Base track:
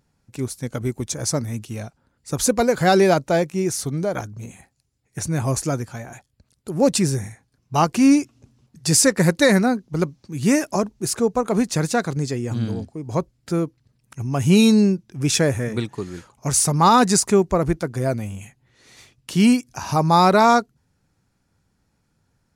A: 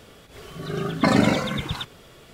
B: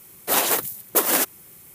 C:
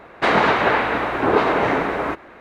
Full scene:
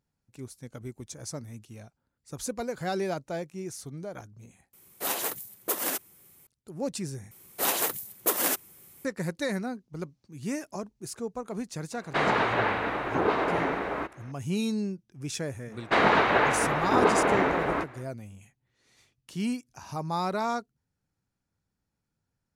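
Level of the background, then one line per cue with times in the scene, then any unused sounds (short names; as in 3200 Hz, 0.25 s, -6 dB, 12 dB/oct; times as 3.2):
base track -15 dB
4.73 replace with B -10 dB
7.31 replace with B -6.5 dB
11.92 add C -8.5 dB
15.69 add C -5 dB, fades 0.10 s
not used: A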